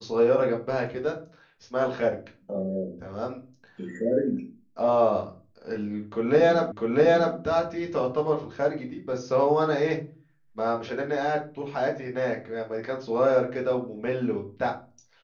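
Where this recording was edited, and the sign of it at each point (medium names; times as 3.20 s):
6.72 s: repeat of the last 0.65 s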